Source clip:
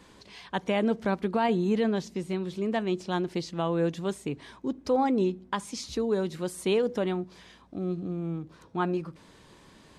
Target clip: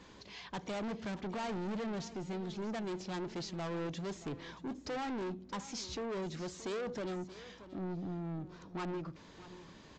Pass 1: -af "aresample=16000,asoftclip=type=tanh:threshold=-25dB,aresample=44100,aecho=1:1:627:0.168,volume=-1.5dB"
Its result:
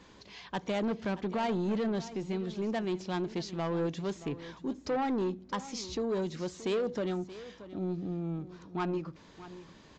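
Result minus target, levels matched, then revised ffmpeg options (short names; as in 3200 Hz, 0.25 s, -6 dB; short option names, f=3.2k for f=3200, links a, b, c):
soft clip: distortion -7 dB
-af "aresample=16000,asoftclip=type=tanh:threshold=-35dB,aresample=44100,aecho=1:1:627:0.168,volume=-1.5dB"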